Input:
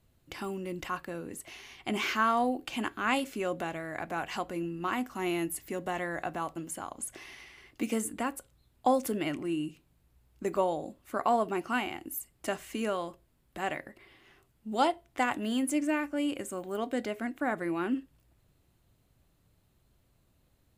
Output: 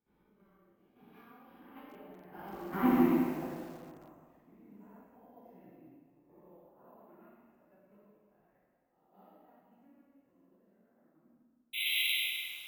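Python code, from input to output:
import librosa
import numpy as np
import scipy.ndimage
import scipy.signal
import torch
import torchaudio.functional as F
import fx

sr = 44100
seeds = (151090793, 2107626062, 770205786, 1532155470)

y = fx.spec_swells(x, sr, rise_s=1.45)
y = fx.doppler_pass(y, sr, speed_mps=23, closest_m=1.3, pass_at_s=4.69)
y = fx.tilt_shelf(y, sr, db=8.5, hz=1300.0)
y = fx.level_steps(y, sr, step_db=13)
y = fx.stretch_grains(y, sr, factor=0.61, grain_ms=57.0)
y = fx.spec_paint(y, sr, seeds[0], shape='noise', start_s=11.73, length_s=0.42, low_hz=2000.0, high_hz=4000.0, level_db=-39.0)
y = fx.air_absorb(y, sr, metres=110.0)
y = fx.rev_plate(y, sr, seeds[1], rt60_s=1.8, hf_ratio=0.95, predelay_ms=0, drr_db=-10.0)
y = np.repeat(scipy.signal.resample_poly(y, 1, 3), 3)[:len(y)]
y = fx.echo_crushed(y, sr, ms=135, feedback_pct=35, bits=8, wet_db=-10.0)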